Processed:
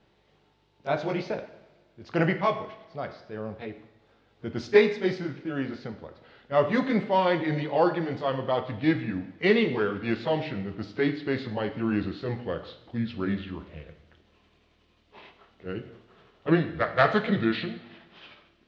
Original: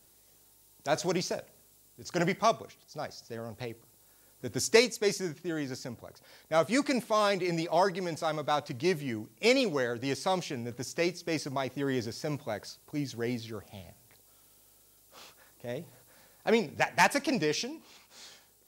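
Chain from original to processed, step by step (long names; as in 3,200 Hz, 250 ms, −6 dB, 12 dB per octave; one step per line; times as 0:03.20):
pitch glide at a constant tempo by −5.5 semitones starting unshifted
low-pass filter 3,300 Hz 24 dB per octave
convolution reverb, pre-delay 3 ms, DRR 7 dB
level +4 dB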